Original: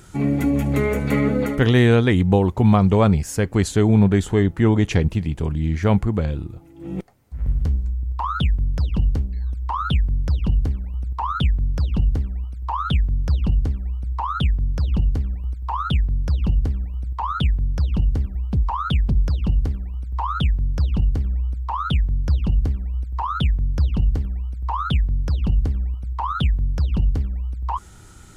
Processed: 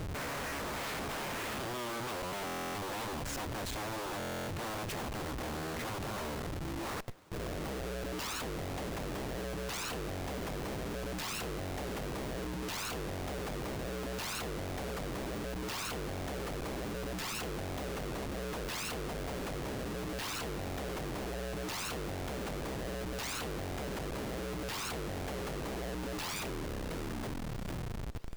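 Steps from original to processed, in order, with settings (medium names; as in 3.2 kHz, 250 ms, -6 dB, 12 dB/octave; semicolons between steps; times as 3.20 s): tape stop on the ending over 2.22 s; low-pass 1.2 kHz 6 dB/octave; peaking EQ 730 Hz -2.5 dB 0.34 oct; in parallel at +2.5 dB: compressor with a negative ratio -21 dBFS, ratio -0.5; on the sum: peak limiter -13 dBFS, peak gain reduction 10 dB; wavefolder -28.5 dBFS; flange 1.7 Hz, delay 7.2 ms, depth 6.6 ms, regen -90%; Schmitt trigger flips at -45.5 dBFS; on a send: thinning echo 654 ms, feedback 68%, high-pass 190 Hz, level -22 dB; on the sum: buffer glitch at 2.45/4.18 s, samples 1024, times 12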